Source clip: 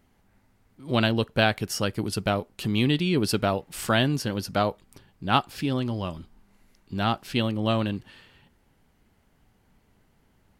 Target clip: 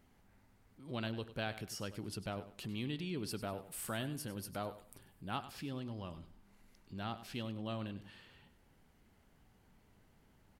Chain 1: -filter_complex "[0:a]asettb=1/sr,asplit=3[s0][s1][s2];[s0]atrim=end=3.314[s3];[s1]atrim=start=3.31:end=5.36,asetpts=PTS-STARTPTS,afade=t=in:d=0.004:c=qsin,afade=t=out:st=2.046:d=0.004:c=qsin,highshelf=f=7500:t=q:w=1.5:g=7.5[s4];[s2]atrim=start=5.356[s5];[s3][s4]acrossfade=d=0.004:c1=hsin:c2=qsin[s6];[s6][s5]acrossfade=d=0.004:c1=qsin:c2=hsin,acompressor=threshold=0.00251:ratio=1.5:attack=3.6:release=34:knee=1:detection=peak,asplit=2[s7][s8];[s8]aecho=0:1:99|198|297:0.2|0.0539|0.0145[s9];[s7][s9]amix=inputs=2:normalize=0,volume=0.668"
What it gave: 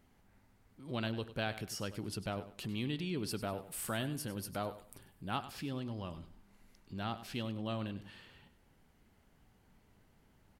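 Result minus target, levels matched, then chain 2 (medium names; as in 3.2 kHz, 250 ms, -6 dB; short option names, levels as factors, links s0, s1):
compression: peak gain reduction -2.5 dB
-filter_complex "[0:a]asettb=1/sr,asplit=3[s0][s1][s2];[s0]atrim=end=3.314[s3];[s1]atrim=start=3.31:end=5.36,asetpts=PTS-STARTPTS,afade=t=in:d=0.004:c=qsin,afade=t=out:st=2.046:d=0.004:c=qsin,highshelf=f=7500:t=q:w=1.5:g=7.5[s4];[s2]atrim=start=5.356[s5];[s3][s4]acrossfade=d=0.004:c1=hsin:c2=qsin[s6];[s6][s5]acrossfade=d=0.004:c1=qsin:c2=hsin,acompressor=threshold=0.001:ratio=1.5:attack=3.6:release=34:knee=1:detection=peak,asplit=2[s7][s8];[s8]aecho=0:1:99|198|297:0.2|0.0539|0.0145[s9];[s7][s9]amix=inputs=2:normalize=0,volume=0.668"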